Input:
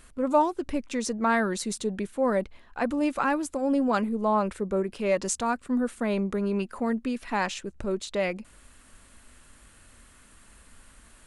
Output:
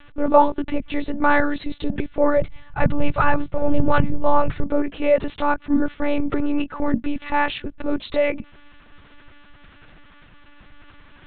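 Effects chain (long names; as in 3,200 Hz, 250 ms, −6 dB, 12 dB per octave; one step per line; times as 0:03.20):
one-pitch LPC vocoder at 8 kHz 290 Hz
0:02.37–0:04.64: low shelf with overshoot 190 Hz +7 dB, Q 3
level +8 dB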